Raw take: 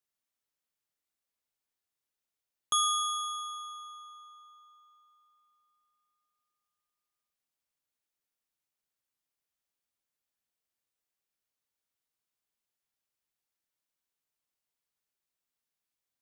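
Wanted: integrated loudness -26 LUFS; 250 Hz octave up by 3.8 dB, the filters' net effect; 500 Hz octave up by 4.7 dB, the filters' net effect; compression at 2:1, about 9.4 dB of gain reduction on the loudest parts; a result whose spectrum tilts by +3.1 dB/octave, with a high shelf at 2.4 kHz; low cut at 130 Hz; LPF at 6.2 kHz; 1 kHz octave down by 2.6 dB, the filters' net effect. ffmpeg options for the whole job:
-af "highpass=130,lowpass=6200,equalizer=f=250:t=o:g=3.5,equalizer=f=500:t=o:g=6.5,equalizer=f=1000:t=o:g=-6,highshelf=f=2400:g=5.5,acompressor=threshold=0.00891:ratio=2,volume=4.22"

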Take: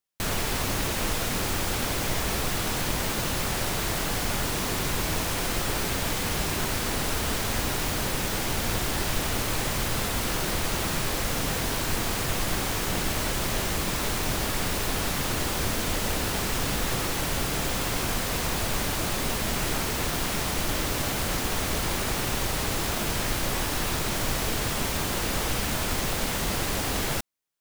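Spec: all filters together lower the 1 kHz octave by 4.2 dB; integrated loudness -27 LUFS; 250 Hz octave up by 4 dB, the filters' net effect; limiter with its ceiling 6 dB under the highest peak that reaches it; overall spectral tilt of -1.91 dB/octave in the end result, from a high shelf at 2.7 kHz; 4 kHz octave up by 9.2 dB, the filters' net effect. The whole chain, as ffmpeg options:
-af "equalizer=f=250:t=o:g=5.5,equalizer=f=1000:t=o:g=-7.5,highshelf=f=2700:g=7,equalizer=f=4000:t=o:g=6,volume=0.631,alimiter=limit=0.112:level=0:latency=1"

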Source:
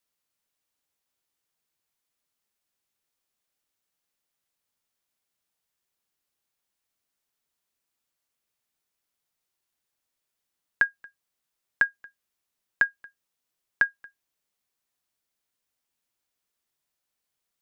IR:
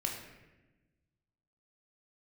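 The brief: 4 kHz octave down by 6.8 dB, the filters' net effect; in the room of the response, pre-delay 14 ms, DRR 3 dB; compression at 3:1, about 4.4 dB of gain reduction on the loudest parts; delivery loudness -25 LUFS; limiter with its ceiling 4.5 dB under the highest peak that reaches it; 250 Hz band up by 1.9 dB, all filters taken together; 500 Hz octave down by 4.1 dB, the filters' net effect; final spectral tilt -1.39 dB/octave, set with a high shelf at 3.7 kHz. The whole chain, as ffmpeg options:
-filter_complex "[0:a]equalizer=f=250:t=o:g=4.5,equalizer=f=500:t=o:g=-6.5,highshelf=f=3700:g=-5,equalizer=f=4000:t=o:g=-6.5,acompressor=threshold=0.0631:ratio=3,alimiter=limit=0.15:level=0:latency=1,asplit=2[s0][s1];[1:a]atrim=start_sample=2205,adelay=14[s2];[s1][s2]afir=irnorm=-1:irlink=0,volume=0.531[s3];[s0][s3]amix=inputs=2:normalize=0,volume=3.76"

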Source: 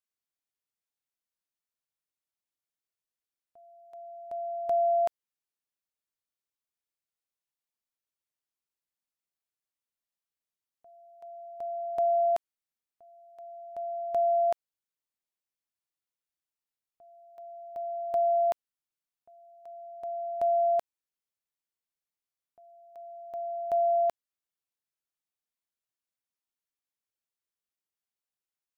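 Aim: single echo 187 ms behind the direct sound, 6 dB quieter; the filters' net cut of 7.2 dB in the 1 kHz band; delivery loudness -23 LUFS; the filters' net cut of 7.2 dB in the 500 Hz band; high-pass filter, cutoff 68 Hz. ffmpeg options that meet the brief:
-af "highpass=68,equalizer=f=500:t=o:g=-6.5,equalizer=f=1000:t=o:g=-8,aecho=1:1:187:0.501,volume=3.76"

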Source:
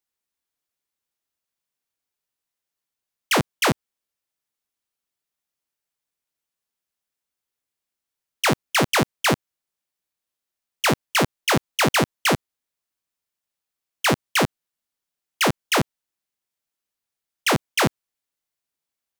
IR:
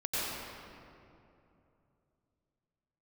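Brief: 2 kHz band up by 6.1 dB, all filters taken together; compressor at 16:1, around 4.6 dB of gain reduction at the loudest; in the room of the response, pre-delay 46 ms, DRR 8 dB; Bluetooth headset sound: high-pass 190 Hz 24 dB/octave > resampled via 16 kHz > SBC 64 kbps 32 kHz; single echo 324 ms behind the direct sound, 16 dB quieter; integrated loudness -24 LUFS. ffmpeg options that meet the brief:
-filter_complex "[0:a]equalizer=f=2000:t=o:g=7.5,acompressor=threshold=0.158:ratio=16,aecho=1:1:324:0.158,asplit=2[s0][s1];[1:a]atrim=start_sample=2205,adelay=46[s2];[s1][s2]afir=irnorm=-1:irlink=0,volume=0.168[s3];[s0][s3]amix=inputs=2:normalize=0,highpass=f=190:w=0.5412,highpass=f=190:w=1.3066,aresample=16000,aresample=44100,volume=0.891" -ar 32000 -c:a sbc -b:a 64k

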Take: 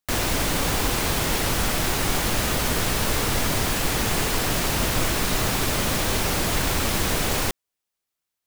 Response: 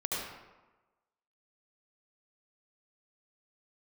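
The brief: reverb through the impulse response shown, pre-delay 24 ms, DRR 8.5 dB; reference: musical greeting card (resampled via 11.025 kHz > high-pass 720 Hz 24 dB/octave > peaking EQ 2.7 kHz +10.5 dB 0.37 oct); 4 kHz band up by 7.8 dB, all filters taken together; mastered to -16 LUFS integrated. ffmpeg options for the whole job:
-filter_complex "[0:a]equalizer=f=4000:t=o:g=6,asplit=2[s0][s1];[1:a]atrim=start_sample=2205,adelay=24[s2];[s1][s2]afir=irnorm=-1:irlink=0,volume=0.2[s3];[s0][s3]amix=inputs=2:normalize=0,aresample=11025,aresample=44100,highpass=f=720:w=0.5412,highpass=f=720:w=1.3066,equalizer=f=2700:t=o:w=0.37:g=10.5,volume=1.58"

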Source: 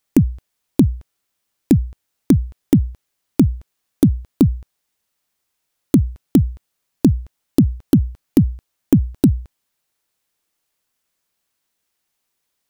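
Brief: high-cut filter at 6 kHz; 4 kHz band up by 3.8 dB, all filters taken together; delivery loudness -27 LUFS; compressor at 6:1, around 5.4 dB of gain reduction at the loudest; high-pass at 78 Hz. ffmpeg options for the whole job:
-af "highpass=78,lowpass=6000,equalizer=f=4000:t=o:g=5.5,acompressor=threshold=0.224:ratio=6,volume=0.668"

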